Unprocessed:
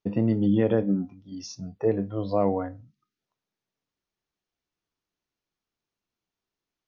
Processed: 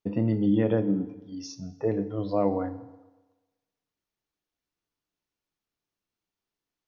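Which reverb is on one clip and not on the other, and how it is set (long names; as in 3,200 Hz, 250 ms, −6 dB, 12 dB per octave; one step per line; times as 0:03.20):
feedback delay network reverb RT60 1.2 s, low-frequency decay 0.85×, high-frequency decay 0.85×, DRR 11.5 dB
level −2 dB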